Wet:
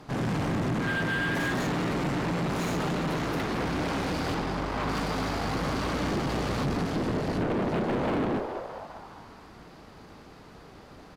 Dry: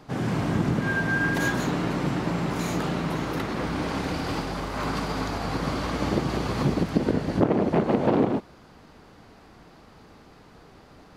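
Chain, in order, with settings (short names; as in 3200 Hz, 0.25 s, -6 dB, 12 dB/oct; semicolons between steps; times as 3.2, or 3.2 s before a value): 4.34–4.89 high shelf 5600 Hz -11.5 dB; on a send: frequency-shifting echo 0.206 s, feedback 55%, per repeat +130 Hz, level -14 dB; on the sum: tube stage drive 29 dB, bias 0.55; slew limiter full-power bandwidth 60 Hz; gain +4 dB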